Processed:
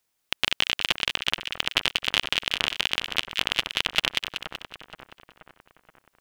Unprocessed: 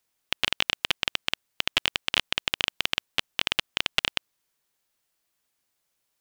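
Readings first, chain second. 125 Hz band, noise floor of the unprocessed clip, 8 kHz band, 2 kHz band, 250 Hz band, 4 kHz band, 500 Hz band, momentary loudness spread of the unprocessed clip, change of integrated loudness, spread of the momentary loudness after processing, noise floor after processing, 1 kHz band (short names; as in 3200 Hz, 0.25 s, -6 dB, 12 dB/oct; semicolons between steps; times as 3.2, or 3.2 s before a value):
+2.0 dB, -78 dBFS, +2.0 dB, +2.0 dB, +2.0 dB, +2.0 dB, +2.0 dB, 4 LU, +2.0 dB, 10 LU, -76 dBFS, +2.0 dB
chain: split-band echo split 1600 Hz, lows 0.476 s, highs 0.189 s, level -7 dB; gain +1 dB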